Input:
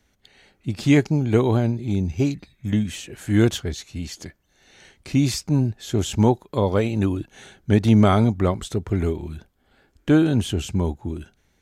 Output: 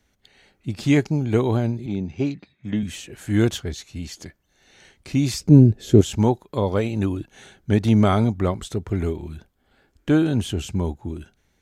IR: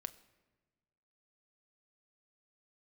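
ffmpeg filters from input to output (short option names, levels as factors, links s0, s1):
-filter_complex "[0:a]asettb=1/sr,asplit=3[s0][s1][s2];[s0]atrim=end=1.864[s3];[s1]atrim=start=1.86:end=2.83,asetpts=PTS-STARTPTS,afade=t=in:d=0.004:c=qsin,afade=t=out:st=0.966:d=0.004:c=qsin,highpass=140,lowpass=4000[s4];[s2]atrim=start=2.826[s5];[s3][s4]acrossfade=d=0.004:c1=hsin:c2=qsin[s6];[s6][s5]acrossfade=d=0.004:c1=qsin:c2=hsin,asettb=1/sr,asplit=3[s7][s8][s9];[s7]atrim=end=5.404[s10];[s8]atrim=start=5.4:end=6.01,asetpts=PTS-STARTPTS,afade=t=in:d=0.004:c=qsin,afade=t=out:st=0.606:d=0.004:c=qsin,lowshelf=f=620:t=q:w=1.5:g=9.5[s11];[s9]atrim=start=6.006[s12];[s10][s11]acrossfade=d=0.004:c1=hsin:c2=qsin[s13];[s13][s12]acrossfade=d=0.004:c1=qsin:c2=hsin,volume=0.841"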